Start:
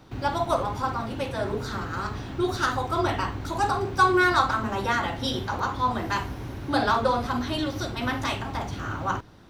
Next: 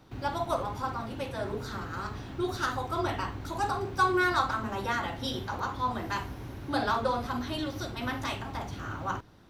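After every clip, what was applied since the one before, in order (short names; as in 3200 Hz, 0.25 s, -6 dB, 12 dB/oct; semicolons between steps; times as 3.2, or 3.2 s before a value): bell 12000 Hz +5 dB 0.24 oct; gain -5.5 dB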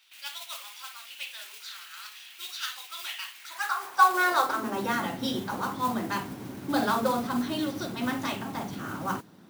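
modulation noise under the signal 16 dB; high-pass sweep 2700 Hz -> 190 Hz, 3.33–4.91; gain +1 dB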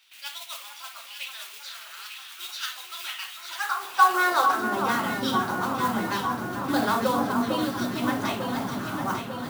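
echo with dull and thin repeats by turns 0.449 s, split 1500 Hz, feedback 79%, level -5 dB; gain +1.5 dB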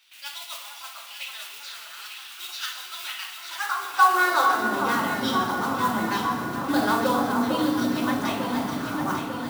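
FDN reverb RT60 1.9 s, low-frequency decay 1.55×, high-frequency decay 1×, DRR 5 dB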